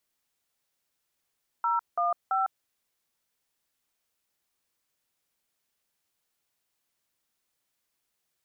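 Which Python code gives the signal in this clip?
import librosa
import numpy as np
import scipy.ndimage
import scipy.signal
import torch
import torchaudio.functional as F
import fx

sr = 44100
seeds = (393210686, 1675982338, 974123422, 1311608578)

y = fx.dtmf(sr, digits='015', tone_ms=153, gap_ms=182, level_db=-26.0)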